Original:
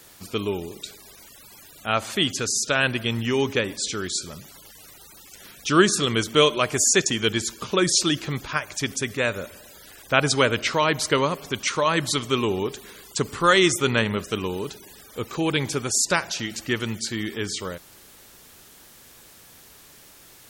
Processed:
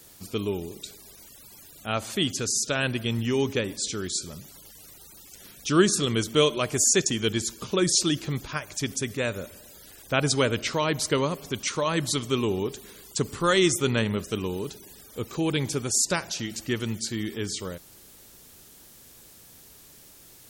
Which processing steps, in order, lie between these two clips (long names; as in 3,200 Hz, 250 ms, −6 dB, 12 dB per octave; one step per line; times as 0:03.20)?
parametric band 1,500 Hz −7 dB 2.9 octaves